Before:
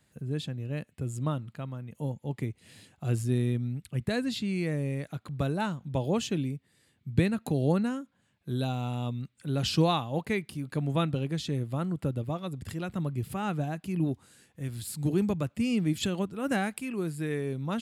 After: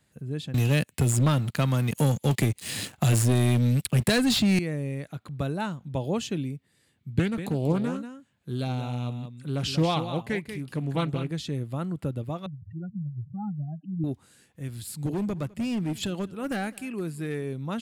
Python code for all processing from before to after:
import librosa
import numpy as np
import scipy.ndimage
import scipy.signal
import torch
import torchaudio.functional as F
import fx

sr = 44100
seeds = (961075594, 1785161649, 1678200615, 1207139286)

y = fx.chain(x, sr, fx.high_shelf(hz=2700.0, db=9.0),
    fx.leveller(passes=3),
    fx.band_squash(depth_pct=70), at=(0.54, 4.59))
y = fx.chain(y, sr, fx.echo_single(ms=187, db=-9.5),
    fx.doppler_dist(depth_ms=0.32), at=(7.19, 11.31))
y = fx.chain(y, sr, fx.spec_expand(power=3.8),
    fx.bandpass_edges(low_hz=110.0, high_hz=3100.0), at=(12.46, 14.04))
y = fx.chain(y, sr, fx.clip_hard(threshold_db=-24.5),
    fx.echo_single(ms=206, db=-22.0), at=(15.06, 17.44))